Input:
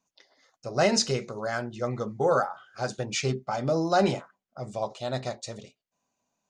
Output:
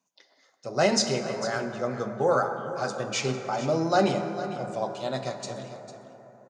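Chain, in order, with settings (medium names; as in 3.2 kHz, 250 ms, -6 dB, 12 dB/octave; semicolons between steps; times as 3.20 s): high-pass 130 Hz 24 dB/octave; on a send: delay 450 ms -13.5 dB; on the sum: plate-style reverb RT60 4.4 s, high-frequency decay 0.3×, DRR 7 dB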